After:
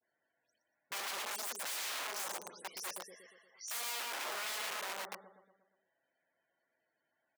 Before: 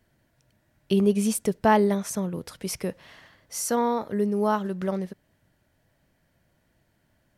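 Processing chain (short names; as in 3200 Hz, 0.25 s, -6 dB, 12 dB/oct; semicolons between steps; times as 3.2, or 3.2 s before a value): spectral delay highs late, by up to 0.124 s; feedback echo 0.118 s, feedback 53%, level -5 dB; loudest bins only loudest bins 64; wrapped overs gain 25.5 dB; HPF 600 Hz 12 dB/oct; gain -9 dB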